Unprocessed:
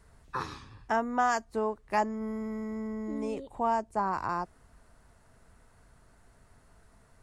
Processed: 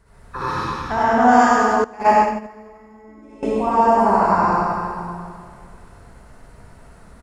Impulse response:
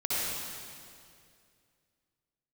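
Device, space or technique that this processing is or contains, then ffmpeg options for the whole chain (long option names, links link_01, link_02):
swimming-pool hall: -filter_complex "[1:a]atrim=start_sample=2205[link_01];[0:a][link_01]afir=irnorm=-1:irlink=0,highshelf=frequency=3200:gain=-5.5,aecho=1:1:98|196|294:0.668|0.114|0.0193,asettb=1/sr,asplit=3[link_02][link_03][link_04];[link_02]atrim=end=1.844[link_05];[link_03]atrim=start=1.84:end=3.43,asetpts=PTS-STARTPTS,afade=type=in:duration=0.004:curve=qsin,afade=type=out:start_time=1.586:duration=0.004:curve=qsin,agate=range=-18dB:threshold=-20dB:ratio=16:detection=peak[link_06];[link_04]atrim=start=3.426[link_07];[link_05][link_06]acrossfade=duration=0.004:curve1=hsin:curve2=qsin[link_08];[link_08][link_07]acrossfade=duration=0.004:curve1=qsin:curve2=hsin,volume=5dB"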